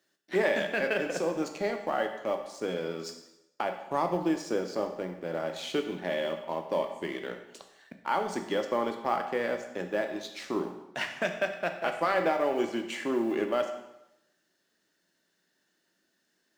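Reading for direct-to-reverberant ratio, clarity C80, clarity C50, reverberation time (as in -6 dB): 5.5 dB, 10.0 dB, 8.0 dB, 0.85 s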